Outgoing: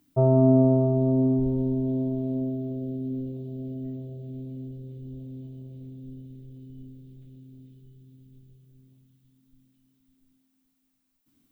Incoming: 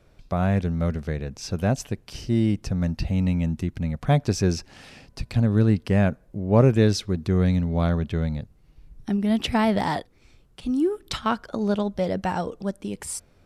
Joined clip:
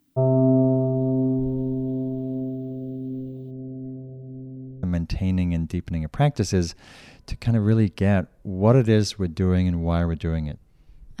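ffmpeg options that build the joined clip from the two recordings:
ffmpeg -i cue0.wav -i cue1.wav -filter_complex "[0:a]asplit=3[link_01][link_02][link_03];[link_01]afade=type=out:start_time=3.5:duration=0.02[link_04];[link_02]lowpass=1200,afade=type=in:start_time=3.5:duration=0.02,afade=type=out:start_time=4.83:duration=0.02[link_05];[link_03]afade=type=in:start_time=4.83:duration=0.02[link_06];[link_04][link_05][link_06]amix=inputs=3:normalize=0,apad=whole_dur=11.2,atrim=end=11.2,atrim=end=4.832[link_07];[1:a]atrim=start=2.718:end=9.09[link_08];[link_07][link_08]acrossfade=duration=0.004:curve1=hsin:curve2=hsin" out.wav

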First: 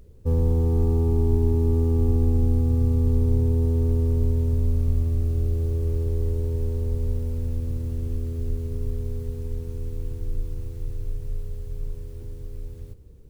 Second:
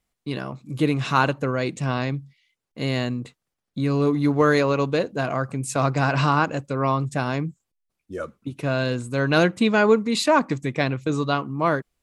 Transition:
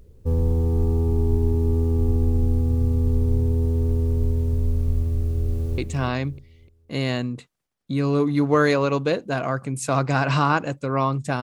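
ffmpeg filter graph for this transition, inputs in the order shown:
ffmpeg -i cue0.wav -i cue1.wav -filter_complex "[0:a]apad=whole_dur=11.42,atrim=end=11.42,atrim=end=5.782[link_01];[1:a]atrim=start=1.648:end=7.29[link_02];[link_01][link_02]acrossfade=duration=0.004:curve1=hsin:curve2=hsin,asplit=2[link_03][link_04];[link_04]afade=type=in:start_time=5.18:duration=0.01,afade=type=out:start_time=5.78:duration=0.01,aecho=0:1:300|600|900|1200:0.398107|0.139338|0.0487681|0.0170688[link_05];[link_03][link_05]amix=inputs=2:normalize=0" out.wav

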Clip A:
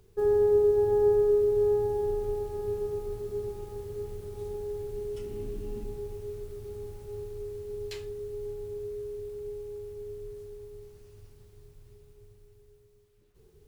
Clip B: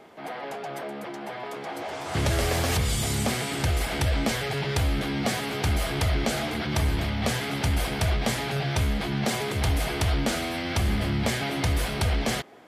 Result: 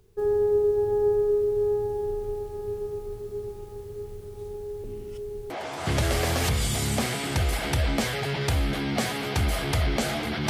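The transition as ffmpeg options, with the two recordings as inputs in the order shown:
ffmpeg -i cue0.wav -i cue1.wav -filter_complex "[0:a]apad=whole_dur=10.49,atrim=end=10.49,asplit=2[link_01][link_02];[link_01]atrim=end=4.842[link_03];[link_02]atrim=start=4.838:end=5.502,asetpts=PTS-STARTPTS,areverse[link_04];[1:a]atrim=start=1.778:end=6.77[link_05];[link_03][link_04]acrossfade=duration=0.004:curve1=hsin:curve2=hsin[link_06];[link_06][link_05]acrossfade=duration=0.004:curve1=hsin:curve2=hsin" out.wav

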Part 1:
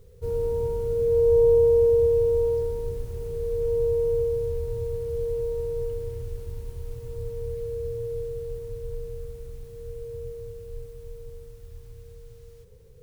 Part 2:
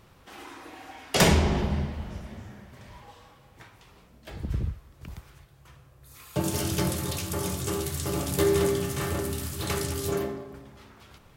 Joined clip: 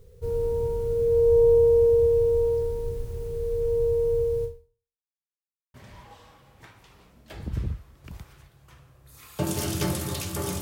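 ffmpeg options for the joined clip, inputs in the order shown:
ffmpeg -i cue0.wav -i cue1.wav -filter_complex "[0:a]apad=whole_dur=10.61,atrim=end=10.61,asplit=2[link_01][link_02];[link_01]atrim=end=5.08,asetpts=PTS-STARTPTS,afade=type=out:start_time=4.44:duration=0.64:curve=exp[link_03];[link_02]atrim=start=5.08:end=5.74,asetpts=PTS-STARTPTS,volume=0[link_04];[1:a]atrim=start=2.71:end=7.58,asetpts=PTS-STARTPTS,afade=type=in:duration=0.004:curve=hsin[link_05];[link_03][link_04][link_05]concat=n=3:v=0:a=1" out.wav

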